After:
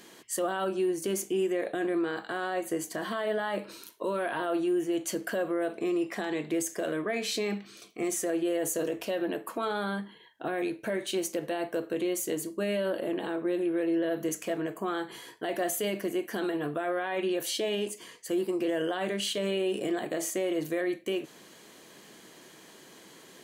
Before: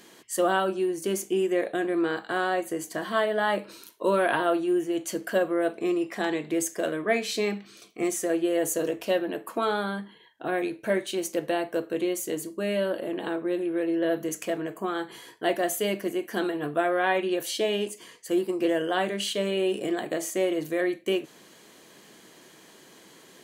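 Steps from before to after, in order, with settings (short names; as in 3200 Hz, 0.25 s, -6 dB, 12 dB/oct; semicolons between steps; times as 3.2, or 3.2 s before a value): limiter -21.5 dBFS, peak gain reduction 11 dB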